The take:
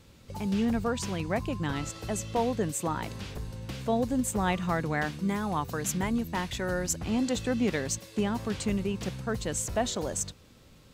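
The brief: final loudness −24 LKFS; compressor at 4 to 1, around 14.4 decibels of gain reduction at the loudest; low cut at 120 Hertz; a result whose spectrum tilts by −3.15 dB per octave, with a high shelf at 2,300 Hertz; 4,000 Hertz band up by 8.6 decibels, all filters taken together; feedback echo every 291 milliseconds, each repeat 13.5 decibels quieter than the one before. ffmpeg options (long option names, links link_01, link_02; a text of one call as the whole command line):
ffmpeg -i in.wav -af "highpass=120,highshelf=frequency=2300:gain=8.5,equalizer=frequency=4000:width_type=o:gain=3,acompressor=threshold=-36dB:ratio=4,aecho=1:1:291|582:0.211|0.0444,volume=13.5dB" out.wav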